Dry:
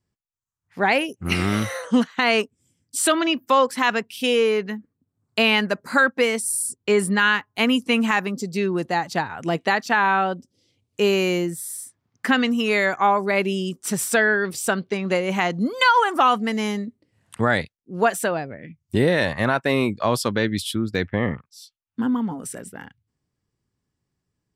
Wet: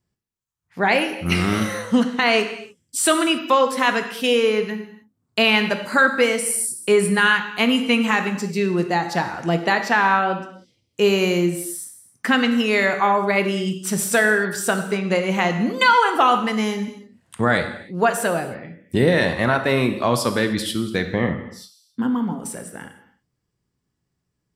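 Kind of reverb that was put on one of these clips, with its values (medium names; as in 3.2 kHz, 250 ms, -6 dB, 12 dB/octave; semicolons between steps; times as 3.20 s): gated-style reverb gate 330 ms falling, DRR 6.5 dB; trim +1 dB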